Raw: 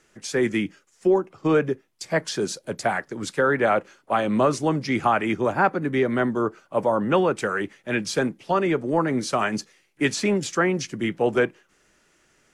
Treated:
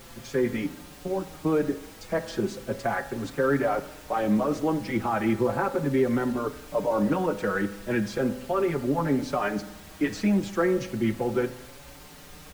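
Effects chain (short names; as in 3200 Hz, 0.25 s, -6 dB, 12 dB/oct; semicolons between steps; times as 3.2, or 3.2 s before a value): LPF 1300 Hz 6 dB/oct; limiter -18 dBFS, peak gain reduction 8 dB; added noise pink -47 dBFS; on a send at -10.5 dB: reverb RT60 0.85 s, pre-delay 3 ms; on the sum: endless flanger 5.5 ms +0.36 Hz; gain +3.5 dB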